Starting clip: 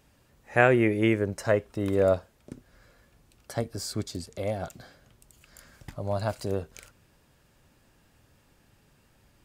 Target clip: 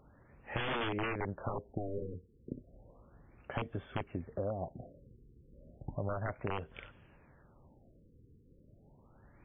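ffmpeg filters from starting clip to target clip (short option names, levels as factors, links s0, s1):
-af "aeval=exprs='(mod(10*val(0)+1,2)-1)/10':c=same,acompressor=threshold=0.0178:ratio=6,afftfilt=real='re*lt(b*sr/1024,500*pow(3600/500,0.5+0.5*sin(2*PI*0.33*pts/sr)))':imag='im*lt(b*sr/1024,500*pow(3600/500,0.5+0.5*sin(2*PI*0.33*pts/sr)))':win_size=1024:overlap=0.75,volume=1.26"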